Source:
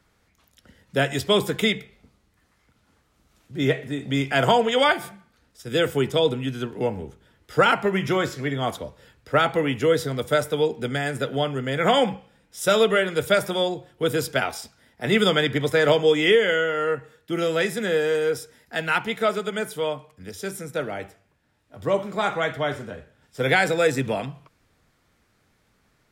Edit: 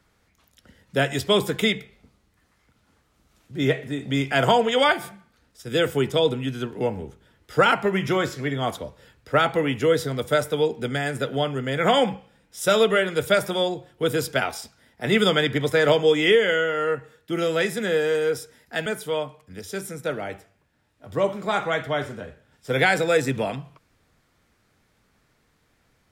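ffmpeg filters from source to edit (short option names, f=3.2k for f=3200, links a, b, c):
-filter_complex "[0:a]asplit=2[a][b];[a]atrim=end=18.862[c];[b]atrim=start=19.558[d];[c][d]acrossfade=d=0.004:c1=hsin:c2=hsin"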